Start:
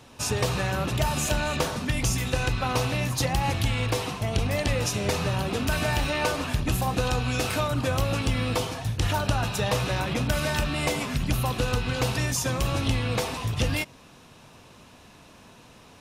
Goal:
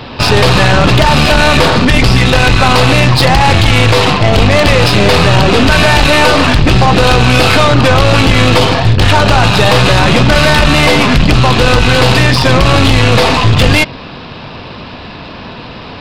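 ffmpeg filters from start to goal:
-af "aresample=11025,aresample=44100,apsyclip=18.8,aeval=exprs='1.12*(cos(1*acos(clip(val(0)/1.12,-1,1)))-cos(1*PI/2))+0.2*(cos(4*acos(clip(val(0)/1.12,-1,1)))-cos(4*PI/2))+0.0447*(cos(5*acos(clip(val(0)/1.12,-1,1)))-cos(5*PI/2))':c=same,volume=0.708"

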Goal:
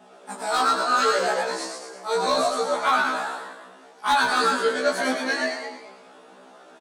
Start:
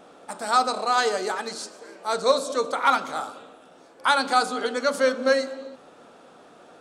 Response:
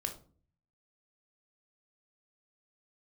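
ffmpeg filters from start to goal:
-filter_complex "[0:a]highpass=160,aecho=1:1:4.8:0.99,flanger=delay=16.5:depth=5.8:speed=0.73,asoftclip=type=hard:threshold=0.2,flanger=delay=6.8:depth=5.5:regen=-75:speed=1.8:shape=triangular,asplit=7[s0][s1][s2][s3][s4][s5][s6];[s1]adelay=111,afreqshift=100,volume=0.668[s7];[s2]adelay=222,afreqshift=200,volume=0.313[s8];[s3]adelay=333,afreqshift=300,volume=0.148[s9];[s4]adelay=444,afreqshift=400,volume=0.0692[s10];[s5]adelay=555,afreqshift=500,volume=0.0327[s11];[s6]adelay=666,afreqshift=600,volume=0.0153[s12];[s0][s7][s8][s9][s10][s11][s12]amix=inputs=7:normalize=0,asplit=2[s13][s14];[1:a]atrim=start_sample=2205,adelay=144[s15];[s14][s15]afir=irnorm=-1:irlink=0,volume=0.158[s16];[s13][s16]amix=inputs=2:normalize=0,afftfilt=real='re*1.73*eq(mod(b,3),0)':imag='im*1.73*eq(mod(b,3),0)':win_size=2048:overlap=0.75,volume=2.11"

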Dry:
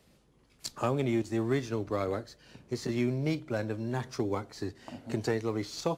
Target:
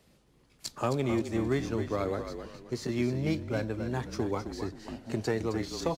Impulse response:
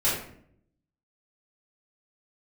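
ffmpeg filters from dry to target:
-filter_complex "[0:a]asplit=5[s0][s1][s2][s3][s4];[s1]adelay=264,afreqshift=-37,volume=0.376[s5];[s2]adelay=528,afreqshift=-74,volume=0.124[s6];[s3]adelay=792,afreqshift=-111,volume=0.0407[s7];[s4]adelay=1056,afreqshift=-148,volume=0.0135[s8];[s0][s5][s6][s7][s8]amix=inputs=5:normalize=0"

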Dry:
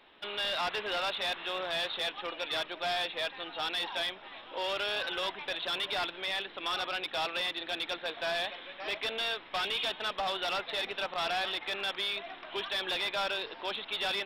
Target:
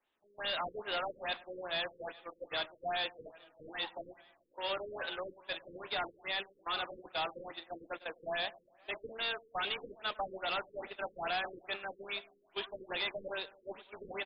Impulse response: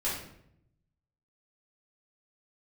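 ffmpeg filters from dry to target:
-filter_complex "[0:a]bandreject=f=62.58:t=h:w=4,bandreject=f=125.16:t=h:w=4,bandreject=f=187.74:t=h:w=4,bandreject=f=250.32:t=h:w=4,bandreject=f=312.9:t=h:w=4,bandreject=f=375.48:t=h:w=4,bandreject=f=438.06:t=h:w=4,bandreject=f=500.64:t=h:w=4,bandreject=f=563.22:t=h:w=4,bandreject=f=625.8:t=h:w=4,bandreject=f=688.38:t=h:w=4,bandreject=f=750.96:t=h:w=4,bandreject=f=813.54:t=h:w=4,bandreject=f=876.12:t=h:w=4,bandreject=f=938.7:t=h:w=4,bandreject=f=1001.28:t=h:w=4,bandreject=f=1063.86:t=h:w=4,agate=range=0.0891:threshold=0.0178:ratio=16:detection=peak,asplit=2[s0][s1];[s1]adelay=104,lowpass=f=3100:p=1,volume=0.112,asplit=2[s2][s3];[s3]adelay=104,lowpass=f=3100:p=1,volume=0.54,asplit=2[s4][s5];[s5]adelay=104,lowpass=f=3100:p=1,volume=0.54,asplit=2[s6][s7];[s7]adelay=104,lowpass=f=3100:p=1,volume=0.54[s8];[s2][s4][s6][s8]amix=inputs=4:normalize=0[s9];[s0][s9]amix=inputs=2:normalize=0,afftfilt=real='re*lt(b*sr/1024,510*pow(5200/510,0.5+0.5*sin(2*PI*2.4*pts/sr)))':imag='im*lt(b*sr/1024,510*pow(5200/510,0.5+0.5*sin(2*PI*2.4*pts/sr)))':win_size=1024:overlap=0.75,volume=0.794"

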